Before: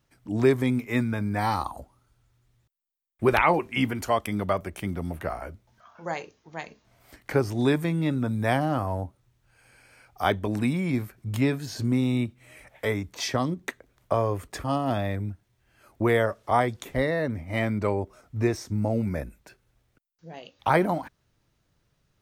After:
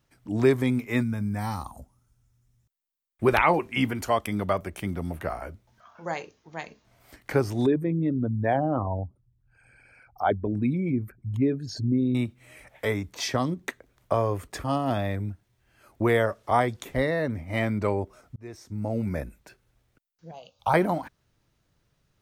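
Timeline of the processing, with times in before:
1.03–2.68 spectral gain 270–5000 Hz -8 dB
7.66–12.15 formant sharpening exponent 2
18.36–19.15 fade in
20.31–20.74 fixed phaser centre 770 Hz, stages 4

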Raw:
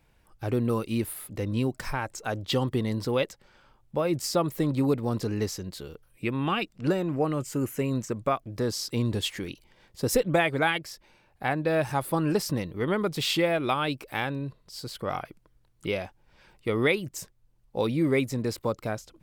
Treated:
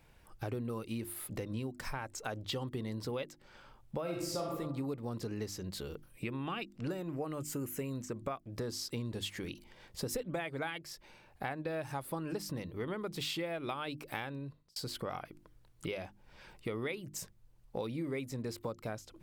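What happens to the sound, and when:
4.02–4.53 reverb throw, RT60 0.84 s, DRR -2.5 dB
6.89–8.02 high shelf 9800 Hz +10 dB
14.16–14.76 fade out
whole clip: notches 50/100/150/200/250/300/350 Hz; compressor 4:1, threshold -40 dBFS; gain +2 dB

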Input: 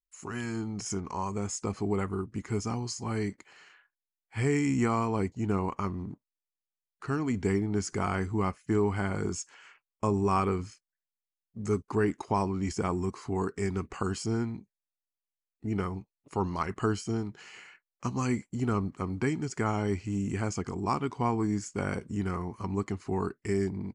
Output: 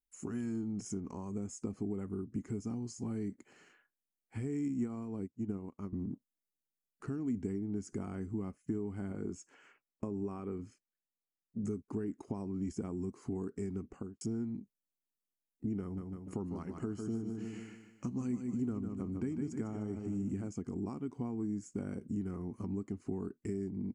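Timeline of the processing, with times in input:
4.68–5.93 upward expander 2.5:1, over -42 dBFS
9.12–11.64 tone controls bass -4 dB, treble -7 dB
13.72–14.21 studio fade out
15.82–20.48 feedback echo 0.151 s, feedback 41%, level -7.5 dB
whole clip: compressor 5:1, threshold -40 dBFS; graphic EQ 250/1000/2000/4000 Hz +9/-8/-5/-12 dB

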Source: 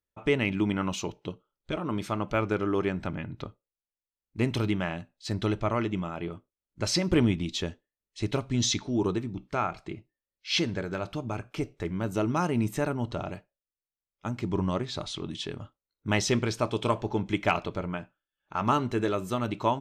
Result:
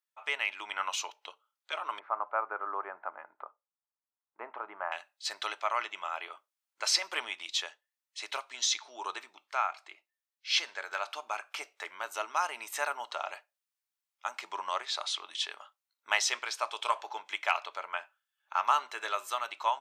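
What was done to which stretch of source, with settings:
1.99–4.92 LPF 1300 Hz 24 dB/oct
whole clip: HPF 800 Hz 24 dB/oct; vocal rider within 3 dB 0.5 s; gain +1.5 dB

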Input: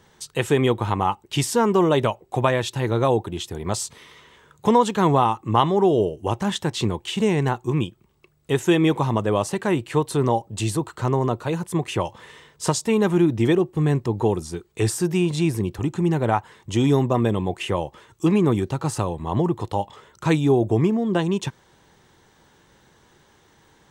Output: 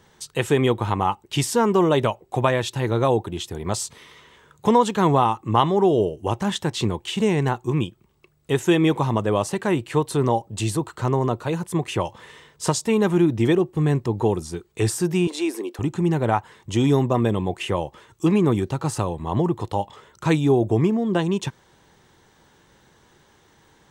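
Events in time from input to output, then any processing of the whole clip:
15.27–15.79 steep high-pass 270 Hz 48 dB/oct

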